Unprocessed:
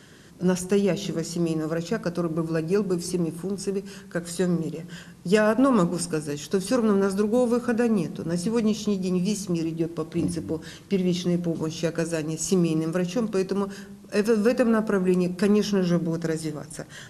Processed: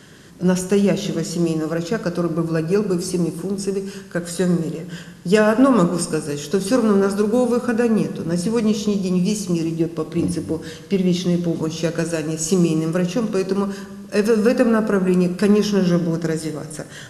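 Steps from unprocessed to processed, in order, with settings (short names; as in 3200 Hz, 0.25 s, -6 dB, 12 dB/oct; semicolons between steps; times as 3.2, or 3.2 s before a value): non-linear reverb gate 0.45 s falling, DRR 10 dB; gain +4.5 dB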